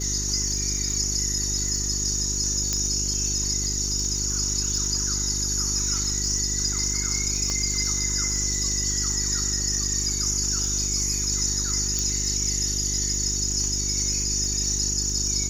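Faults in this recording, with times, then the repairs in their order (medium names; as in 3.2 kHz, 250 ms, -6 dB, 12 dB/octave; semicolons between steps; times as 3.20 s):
crackle 58 per s -30 dBFS
hum 50 Hz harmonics 8 -31 dBFS
2.73 s: pop -9 dBFS
7.50 s: pop -15 dBFS
11.99 s: pop -12 dBFS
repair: de-click; de-hum 50 Hz, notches 8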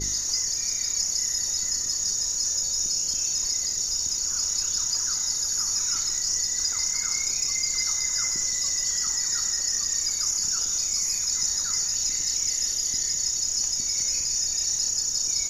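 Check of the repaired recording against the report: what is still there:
7.50 s: pop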